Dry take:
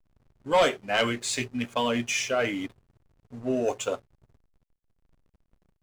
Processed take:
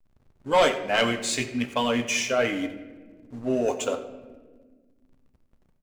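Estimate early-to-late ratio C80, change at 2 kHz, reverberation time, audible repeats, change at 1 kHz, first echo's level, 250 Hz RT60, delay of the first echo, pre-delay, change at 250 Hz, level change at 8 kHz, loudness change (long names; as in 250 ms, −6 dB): 12.0 dB, +2.0 dB, 1.5 s, 1, +2.0 dB, −17.0 dB, 2.6 s, 90 ms, 4 ms, +2.5 dB, +2.0 dB, +2.0 dB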